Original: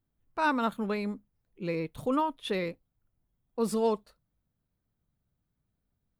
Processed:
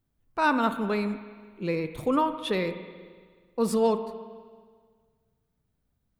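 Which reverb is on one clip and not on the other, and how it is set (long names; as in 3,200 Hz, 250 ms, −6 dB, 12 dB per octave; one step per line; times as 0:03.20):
spring reverb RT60 1.7 s, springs 38/53 ms, chirp 25 ms, DRR 9.5 dB
level +3.5 dB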